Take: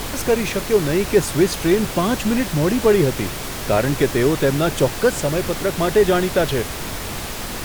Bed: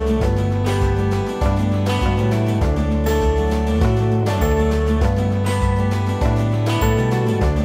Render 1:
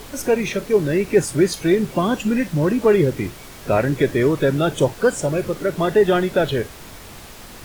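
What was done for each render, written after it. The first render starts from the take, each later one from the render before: noise print and reduce 11 dB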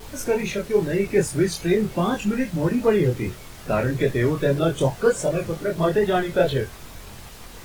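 chorus voices 6, 0.4 Hz, delay 24 ms, depth 1.3 ms; vibrato 2.5 Hz 61 cents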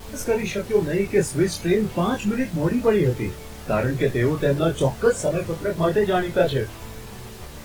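add bed -23.5 dB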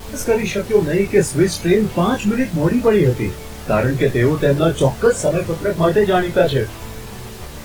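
gain +5.5 dB; limiter -3 dBFS, peak gain reduction 2.5 dB

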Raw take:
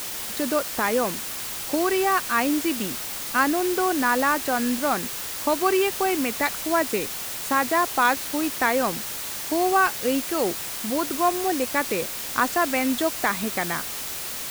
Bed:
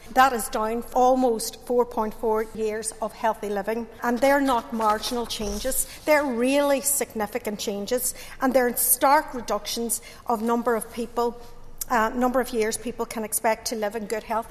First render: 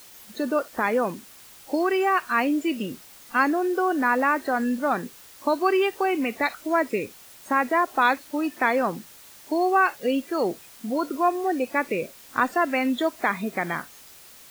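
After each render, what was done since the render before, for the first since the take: noise print and reduce 16 dB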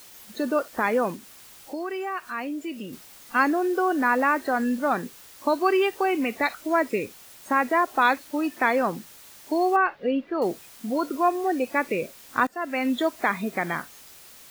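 1.16–2.93 compressor 1.5:1, threshold -43 dBFS; 9.76–10.42 air absorption 350 m; 12.47–12.91 fade in linear, from -19.5 dB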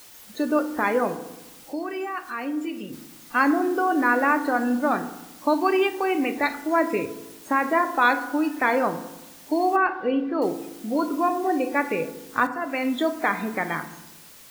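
FDN reverb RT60 1 s, low-frequency decay 1.35×, high-frequency decay 0.4×, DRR 8 dB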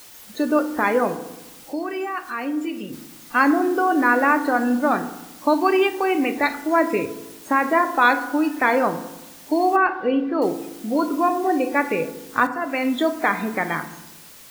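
gain +3 dB

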